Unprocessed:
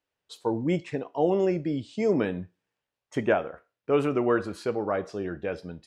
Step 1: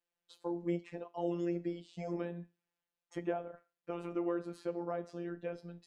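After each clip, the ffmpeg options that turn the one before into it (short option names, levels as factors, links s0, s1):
-filter_complex "[0:a]acrossover=split=220|990|2000[s0][s1][s2][s3];[s0]acompressor=threshold=0.00708:ratio=4[s4];[s1]acompressor=threshold=0.0631:ratio=4[s5];[s2]acompressor=threshold=0.00355:ratio=4[s6];[s3]acompressor=threshold=0.00251:ratio=4[s7];[s4][s5][s6][s7]amix=inputs=4:normalize=0,afftfilt=real='hypot(re,im)*cos(PI*b)':imag='0':win_size=1024:overlap=0.75,volume=0.596"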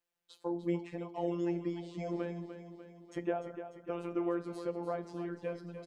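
-af "aecho=1:1:297|594|891|1188|1485|1782:0.316|0.174|0.0957|0.0526|0.0289|0.0159,volume=1.19"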